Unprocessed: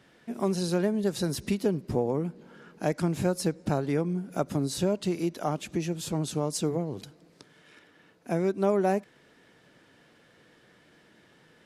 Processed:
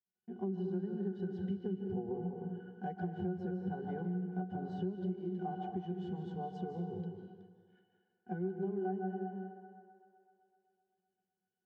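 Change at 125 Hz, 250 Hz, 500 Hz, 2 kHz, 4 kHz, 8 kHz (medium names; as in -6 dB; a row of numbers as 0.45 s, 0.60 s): -9.0 dB, -8.5 dB, -11.5 dB, -13.5 dB, under -20 dB, under -40 dB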